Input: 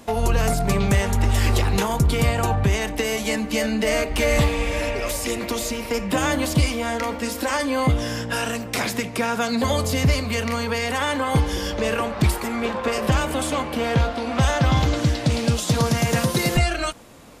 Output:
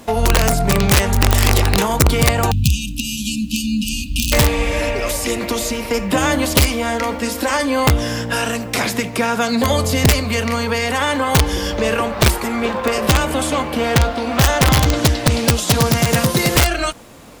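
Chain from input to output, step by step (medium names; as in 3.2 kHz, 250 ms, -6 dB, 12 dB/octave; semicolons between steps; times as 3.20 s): integer overflow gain 11 dB; spectral selection erased 2.51–4.33 s, 290–2400 Hz; bit crusher 10-bit; trim +5 dB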